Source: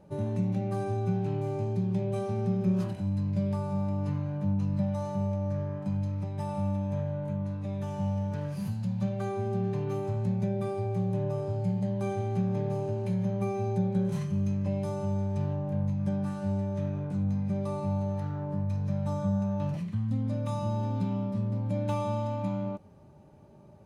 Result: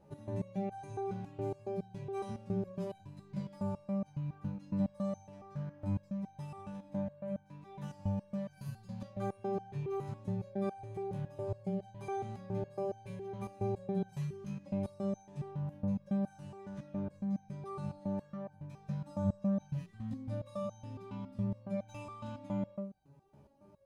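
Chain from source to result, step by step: de-hum 97.55 Hz, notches 7; resonator arpeggio 7.2 Hz 70–780 Hz; trim +3.5 dB

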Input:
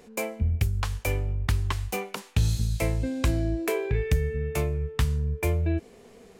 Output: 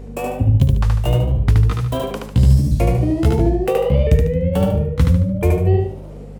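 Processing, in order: sawtooth pitch modulation +5.5 st, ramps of 678 ms; bass shelf 270 Hz -10 dB; in parallel at -7 dB: hard clipper -23.5 dBFS, distortion -21 dB; on the sum: tilt shelf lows +10 dB, about 720 Hz; hum 50 Hz, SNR 16 dB; on a send: feedback delay 74 ms, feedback 36%, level -3 dB; on the sum: trim +6 dB

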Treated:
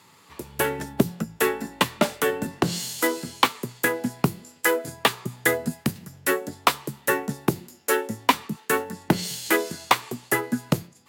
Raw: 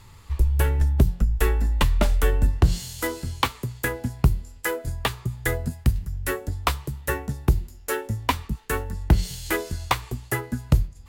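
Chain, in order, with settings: high-pass 180 Hz 24 dB/octave; level rider gain up to 6 dB

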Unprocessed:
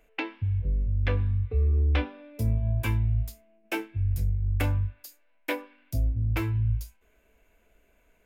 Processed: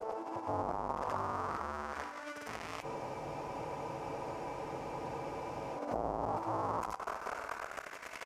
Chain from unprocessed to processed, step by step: one-bit comparator; granulator 100 ms, grains 20 per s; LFO band-pass saw up 0.35 Hz 620–2400 Hz; compressor with a negative ratio -43 dBFS, ratio -0.5; reverberation RT60 0.90 s, pre-delay 21 ms, DRR 15 dB; resampled via 32 kHz; high-order bell 2.5 kHz -11 dB; spectral freeze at 2.86 s, 2.90 s; trim +6.5 dB

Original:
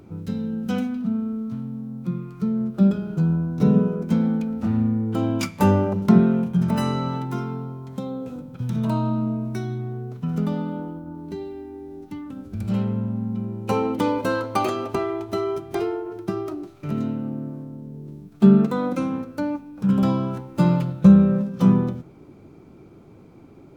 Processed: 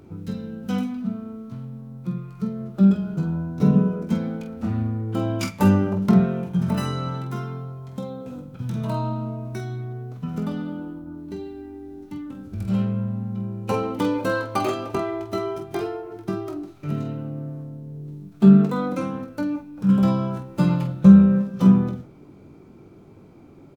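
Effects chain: on a send: early reflections 21 ms -8 dB, 47 ms -8 dB; on the sum: trim -1.5 dB

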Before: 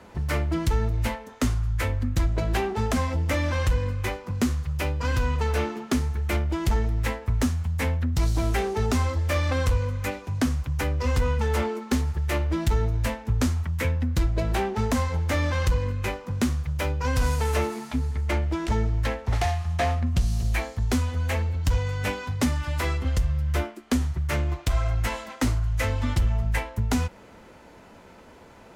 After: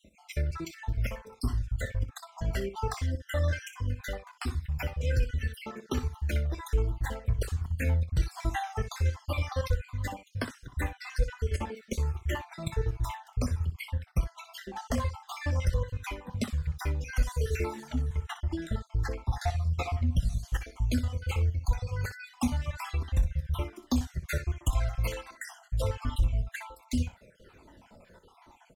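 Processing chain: random holes in the spectrogram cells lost 57%; 23.72–25.15 s: treble shelf 3.9 kHz +6 dB; early reflections 25 ms -16 dB, 61 ms -12 dB; Shepard-style flanger falling 1.3 Hz

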